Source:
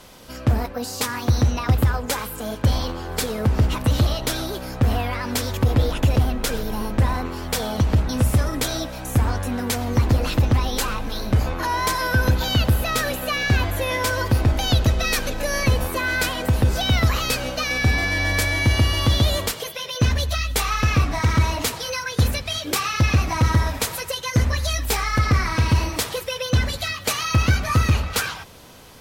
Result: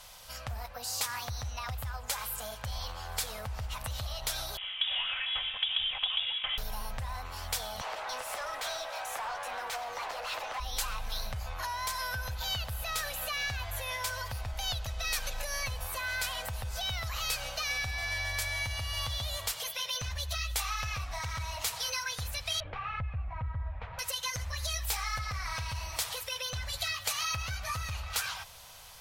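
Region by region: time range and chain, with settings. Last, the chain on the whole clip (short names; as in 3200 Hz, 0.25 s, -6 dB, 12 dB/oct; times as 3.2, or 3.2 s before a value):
4.57–6.58 minimum comb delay 3.9 ms + HPF 220 Hz + inverted band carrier 3600 Hz
7.81–10.6 HPF 320 Hz 24 dB/oct + overdrive pedal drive 25 dB, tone 1300 Hz, clips at -9.5 dBFS
22.6–23.99 LPF 2500 Hz 24 dB/oct + tilt -3 dB/oct
whole clip: EQ curve 410 Hz 0 dB, 690 Hz +7 dB, 1700 Hz -1 dB; compressor, threshold -24 dBFS; passive tone stack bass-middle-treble 10-0-10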